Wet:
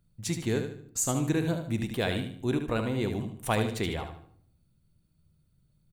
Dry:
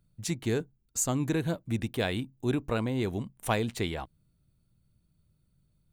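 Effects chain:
repeating echo 75 ms, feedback 34%, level −7.5 dB
on a send at −13 dB: convolution reverb RT60 0.70 s, pre-delay 6 ms

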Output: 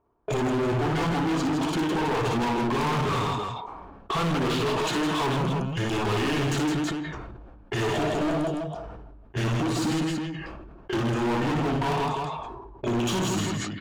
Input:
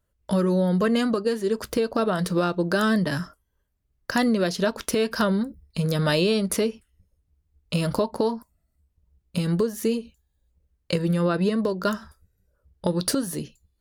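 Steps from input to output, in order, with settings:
pitch shift by two crossfaded delay taps −6.5 semitones
mid-hump overdrive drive 31 dB, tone 5,700 Hz, clips at −10 dBFS
high-shelf EQ 3,000 Hz −10 dB
multi-tap delay 59/160/324 ms −3/−3.5/−8 dB
on a send at −17 dB: convolution reverb RT60 0.60 s, pre-delay 3 ms
on the sum: low-pass that shuts in the quiet parts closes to 940 Hz, open at −18.5 dBFS
notch filter 2,000 Hz, Q 6.8
hard clipping −17 dBFS, distortion −9 dB
level that may fall only so fast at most 31 dB per second
level −6 dB

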